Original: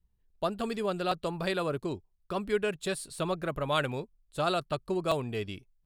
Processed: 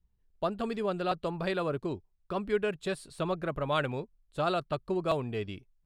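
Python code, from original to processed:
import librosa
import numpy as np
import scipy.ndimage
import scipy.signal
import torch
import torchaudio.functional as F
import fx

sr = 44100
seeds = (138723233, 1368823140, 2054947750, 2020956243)

y = fx.lowpass(x, sr, hz=2900.0, slope=6)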